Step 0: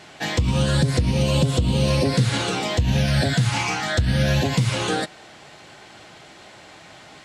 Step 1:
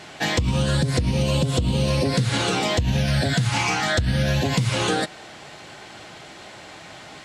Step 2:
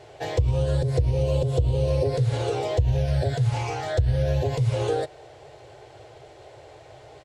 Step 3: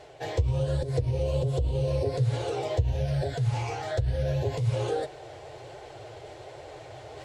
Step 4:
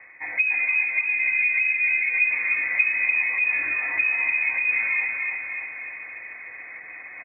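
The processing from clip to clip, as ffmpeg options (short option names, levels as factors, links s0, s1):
-af "acompressor=threshold=0.0891:ratio=6,volume=1.5"
-af "firequalizer=gain_entry='entry(130,0);entry(180,-27);entry(420,2);entry(1200,-15)':delay=0.05:min_phase=1,volume=1.19"
-af "areverse,acompressor=mode=upward:threshold=0.0282:ratio=2.5,areverse,flanger=delay=3.4:depth=8.4:regen=-36:speed=1.2:shape=triangular"
-filter_complex "[0:a]asplit=2[s0][s1];[s1]aecho=0:1:297|594|891|1188|1485|1782|2079|2376:0.668|0.394|0.233|0.137|0.081|0.0478|0.0282|0.0166[s2];[s0][s2]amix=inputs=2:normalize=0,lowpass=f=2200:t=q:w=0.5098,lowpass=f=2200:t=q:w=0.6013,lowpass=f=2200:t=q:w=0.9,lowpass=f=2200:t=q:w=2.563,afreqshift=-2600,volume=1.26"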